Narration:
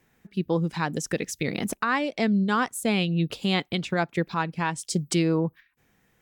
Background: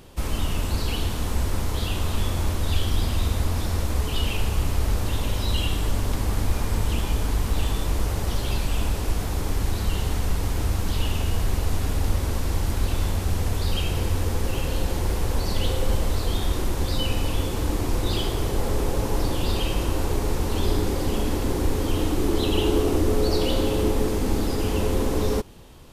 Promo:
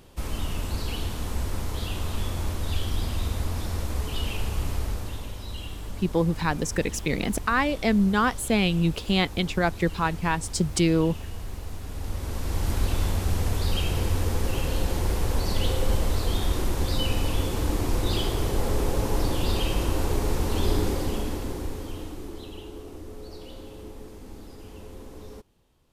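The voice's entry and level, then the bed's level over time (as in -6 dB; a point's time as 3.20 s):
5.65 s, +1.5 dB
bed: 4.74 s -4.5 dB
5.38 s -12 dB
11.83 s -12 dB
12.71 s -1 dB
20.86 s -1 dB
22.68 s -19.5 dB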